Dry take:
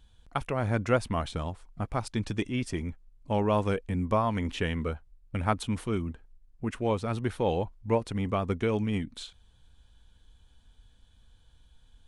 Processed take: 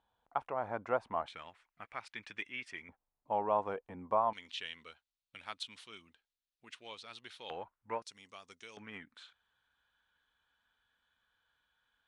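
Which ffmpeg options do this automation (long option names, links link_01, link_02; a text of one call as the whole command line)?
ffmpeg -i in.wav -af "asetnsamples=nb_out_samples=441:pad=0,asendcmd='1.28 bandpass f 2100;2.89 bandpass f 840;4.33 bandpass f 3800;7.5 bandpass f 1400;8.02 bandpass f 5600;8.77 bandpass f 1500',bandpass=frequency=860:width_type=q:width=2.1:csg=0" out.wav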